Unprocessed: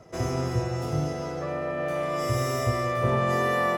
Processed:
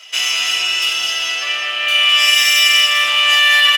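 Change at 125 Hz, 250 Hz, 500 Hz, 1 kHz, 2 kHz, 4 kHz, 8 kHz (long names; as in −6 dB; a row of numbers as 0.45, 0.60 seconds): below −30 dB, below −15 dB, −8.5 dB, +5.0 dB, +20.5 dB, +32.5 dB, +20.5 dB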